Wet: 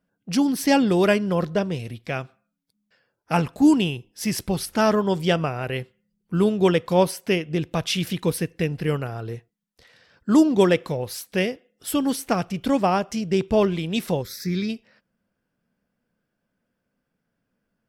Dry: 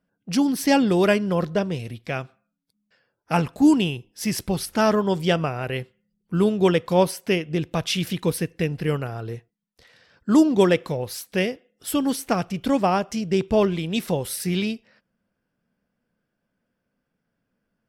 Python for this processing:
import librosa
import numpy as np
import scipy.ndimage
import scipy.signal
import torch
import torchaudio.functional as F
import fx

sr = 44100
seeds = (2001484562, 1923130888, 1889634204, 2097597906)

y = fx.fixed_phaser(x, sr, hz=2900.0, stages=6, at=(14.21, 14.68), fade=0.02)